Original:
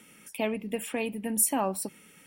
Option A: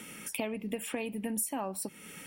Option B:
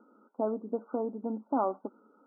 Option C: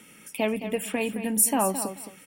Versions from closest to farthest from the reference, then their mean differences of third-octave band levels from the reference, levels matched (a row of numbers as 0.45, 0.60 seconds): C, A, B; 3.5, 6.0, 13.0 decibels